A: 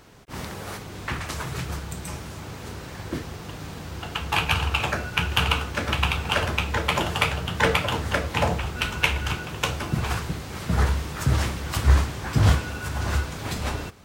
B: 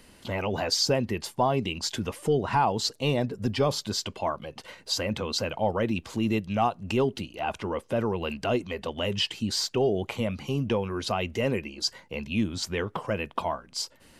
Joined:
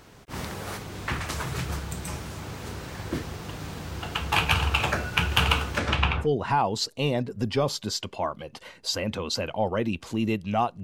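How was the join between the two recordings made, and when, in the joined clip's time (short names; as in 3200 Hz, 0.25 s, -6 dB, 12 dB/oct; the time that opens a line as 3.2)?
A
5.78–6.28 LPF 12000 Hz -> 1200 Hz
6.24 switch to B from 2.27 s, crossfade 0.08 s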